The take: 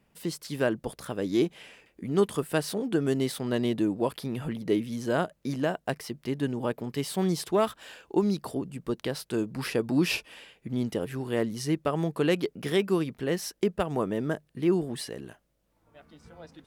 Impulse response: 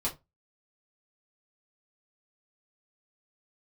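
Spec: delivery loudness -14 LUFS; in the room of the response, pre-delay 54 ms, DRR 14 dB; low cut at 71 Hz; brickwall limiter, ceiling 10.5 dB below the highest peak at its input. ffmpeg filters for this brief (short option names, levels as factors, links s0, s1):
-filter_complex "[0:a]highpass=71,alimiter=limit=0.0708:level=0:latency=1,asplit=2[s0][s1];[1:a]atrim=start_sample=2205,adelay=54[s2];[s1][s2]afir=irnorm=-1:irlink=0,volume=0.112[s3];[s0][s3]amix=inputs=2:normalize=0,volume=10"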